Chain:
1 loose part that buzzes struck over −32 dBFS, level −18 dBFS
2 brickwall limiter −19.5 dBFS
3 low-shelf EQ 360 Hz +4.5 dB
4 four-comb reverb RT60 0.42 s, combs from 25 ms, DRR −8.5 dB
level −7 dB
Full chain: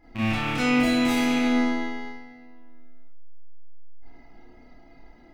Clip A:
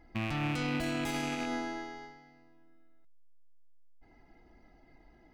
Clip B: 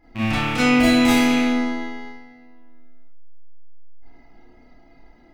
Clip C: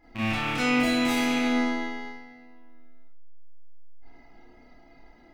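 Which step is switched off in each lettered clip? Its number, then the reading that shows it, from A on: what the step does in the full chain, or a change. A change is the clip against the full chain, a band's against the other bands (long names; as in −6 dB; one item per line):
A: 4, 125 Hz band +5.5 dB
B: 2, change in crest factor +3.0 dB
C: 3, 125 Hz band −3.5 dB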